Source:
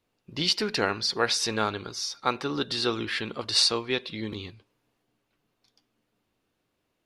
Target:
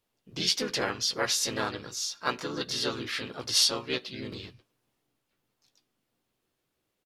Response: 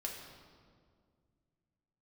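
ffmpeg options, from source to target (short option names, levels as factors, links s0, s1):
-filter_complex "[0:a]highshelf=f=5700:g=8.5,asplit=3[s0][s1][s2];[s1]asetrate=33038,aresample=44100,atempo=1.33484,volume=0.355[s3];[s2]asetrate=52444,aresample=44100,atempo=0.840896,volume=0.794[s4];[s0][s3][s4]amix=inputs=3:normalize=0,asplit=2[s5][s6];[s6]adelay=16,volume=0.251[s7];[s5][s7]amix=inputs=2:normalize=0,volume=0.447"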